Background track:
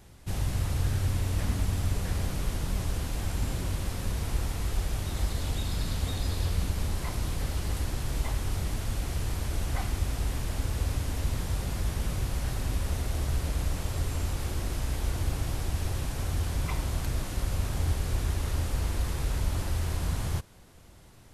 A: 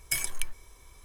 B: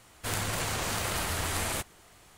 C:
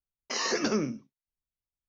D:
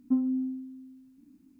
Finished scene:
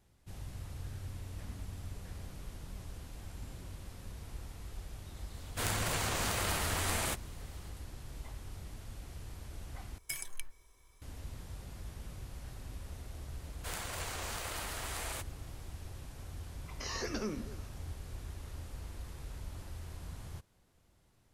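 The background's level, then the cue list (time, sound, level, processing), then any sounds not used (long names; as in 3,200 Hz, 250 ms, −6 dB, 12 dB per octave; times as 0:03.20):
background track −15.5 dB
0:05.33: mix in B −2.5 dB
0:09.98: overwrite with A −10.5 dB
0:13.40: mix in B −8.5 dB + bass and treble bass −12 dB, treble 0 dB
0:16.50: mix in C −10 dB + echo through a band-pass that steps 123 ms, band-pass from 160 Hz, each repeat 1.4 octaves, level −9.5 dB
not used: D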